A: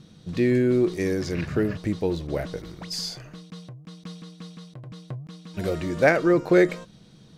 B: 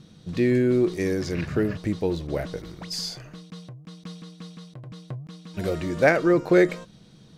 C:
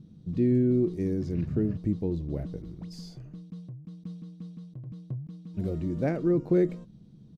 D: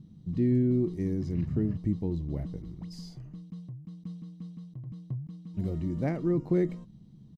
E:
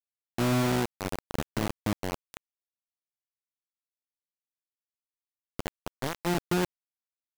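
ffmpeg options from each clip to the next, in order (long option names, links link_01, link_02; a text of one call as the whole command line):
ffmpeg -i in.wav -af anull out.wav
ffmpeg -i in.wav -af "firequalizer=gain_entry='entry(230,0);entry(530,-12);entry(1600,-21);entry(2800,-19)':delay=0.05:min_phase=1" out.wav
ffmpeg -i in.wav -af "aecho=1:1:1:0.36,volume=-2dB" out.wav
ffmpeg -i in.wav -af "acrusher=bits=3:mix=0:aa=0.000001,volume=-3.5dB" out.wav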